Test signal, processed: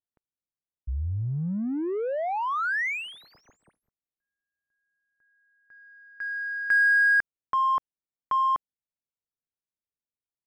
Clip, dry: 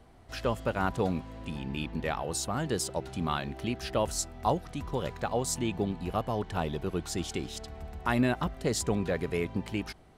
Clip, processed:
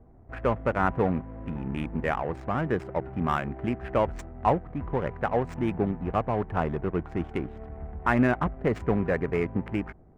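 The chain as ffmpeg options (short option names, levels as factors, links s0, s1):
-af "adynamicsmooth=sensitivity=5.5:basefreq=530,highshelf=f=2900:t=q:w=1.5:g=-11.5,volume=1.58"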